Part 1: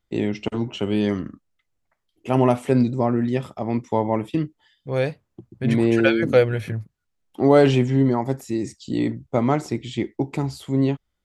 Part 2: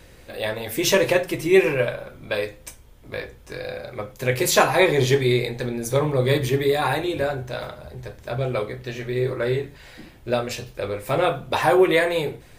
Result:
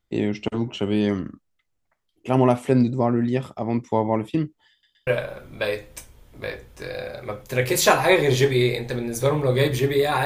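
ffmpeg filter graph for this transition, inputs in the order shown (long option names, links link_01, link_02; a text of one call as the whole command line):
ffmpeg -i cue0.wav -i cue1.wav -filter_complex "[0:a]apad=whole_dur=10.25,atrim=end=10.25,asplit=3[link_01][link_02][link_03];[link_01]atrim=end=4.832[link_04];[link_02]atrim=start=4.708:end=4.832[link_05];[link_03]atrim=start=4.708:end=4.832[link_06];[1:a]atrim=start=1.768:end=6.95[link_07];[link_04][link_05]acrossfade=duration=0.004:curve1=hsin:curve2=hsin[link_08];[link_08][link_06]acrossfade=duration=0.004:curve1=hsin:curve2=hsin[link_09];[link_09][link_07]acrossfade=duration=0.004:curve1=hsin:curve2=hsin" out.wav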